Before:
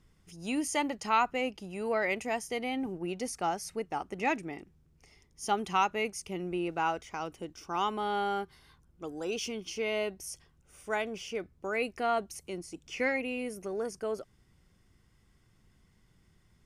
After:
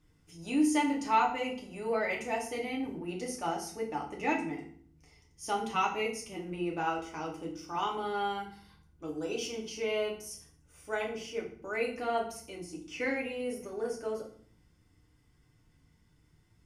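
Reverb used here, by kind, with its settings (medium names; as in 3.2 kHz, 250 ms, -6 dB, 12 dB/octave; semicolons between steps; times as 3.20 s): FDN reverb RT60 0.52 s, low-frequency decay 1.55×, high-frequency decay 0.85×, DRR -2.5 dB; trim -6 dB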